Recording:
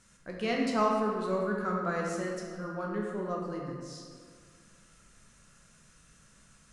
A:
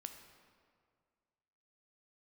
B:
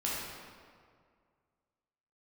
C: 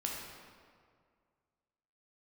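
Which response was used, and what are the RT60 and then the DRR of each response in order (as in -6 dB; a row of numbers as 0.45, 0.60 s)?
C; 2.0, 2.0, 2.0 s; 5.5, -7.0, -2.5 dB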